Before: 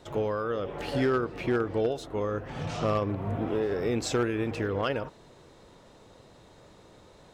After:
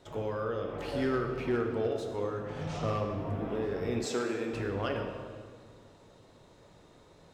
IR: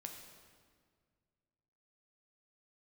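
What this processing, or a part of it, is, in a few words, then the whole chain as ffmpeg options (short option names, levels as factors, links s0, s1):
stairwell: -filter_complex "[1:a]atrim=start_sample=2205[s0];[0:a][s0]afir=irnorm=-1:irlink=0,asettb=1/sr,asplit=3[s1][s2][s3];[s1]atrim=end=4.054[s4];[s2]atrim=start=4.05:end=4.53,asetpts=PTS-STARTPTS,afade=t=in:d=0.004:c=qsin,afade=t=out:st=0.476:d=0.004:c=qsin,highpass=240[s5];[s3]atrim=start=4.526[s6];[s4][s5]acrossfade=d=0.004:c1=hsin:c2=qsin[s7];[s7][s6]acrossfade=d=0.004:c1=qsin:c2=hsin"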